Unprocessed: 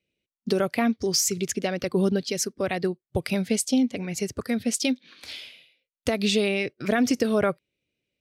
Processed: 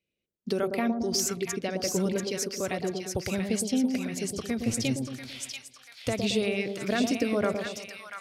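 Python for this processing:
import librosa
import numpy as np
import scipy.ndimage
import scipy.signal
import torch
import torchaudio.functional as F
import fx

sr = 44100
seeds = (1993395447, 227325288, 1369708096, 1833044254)

y = fx.octave_divider(x, sr, octaves=1, level_db=-2.0, at=(4.58, 6.13))
y = fx.echo_split(y, sr, split_hz=1000.0, low_ms=112, high_ms=688, feedback_pct=52, wet_db=-5.0)
y = y * 10.0 ** (-5.0 / 20.0)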